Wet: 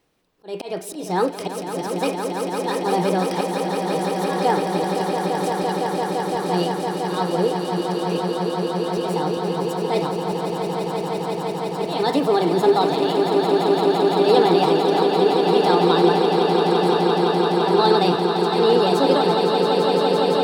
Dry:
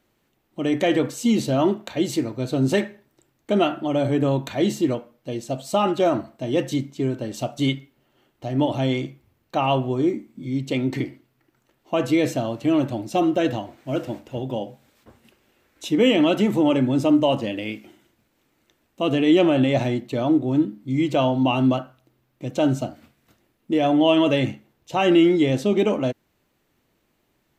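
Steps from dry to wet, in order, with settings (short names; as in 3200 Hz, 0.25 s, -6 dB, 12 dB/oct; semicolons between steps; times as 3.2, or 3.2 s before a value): speed mistake 33 rpm record played at 45 rpm; auto swell 0.25 s; swelling echo 0.17 s, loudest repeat 8, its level -7 dB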